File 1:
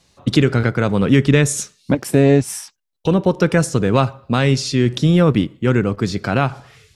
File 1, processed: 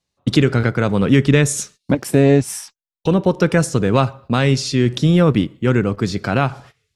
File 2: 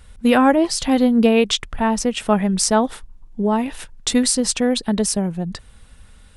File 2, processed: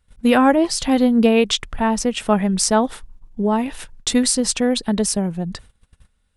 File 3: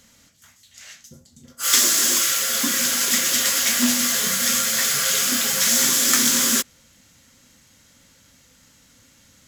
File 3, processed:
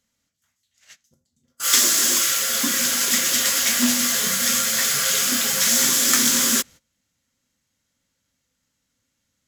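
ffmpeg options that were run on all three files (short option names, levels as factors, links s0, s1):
-af "agate=range=0.1:threshold=0.01:ratio=16:detection=peak"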